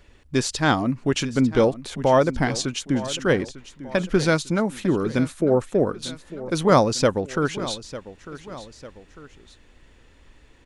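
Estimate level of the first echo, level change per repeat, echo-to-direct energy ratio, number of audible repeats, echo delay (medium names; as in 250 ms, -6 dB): -15.5 dB, -6.5 dB, -14.5 dB, 2, 899 ms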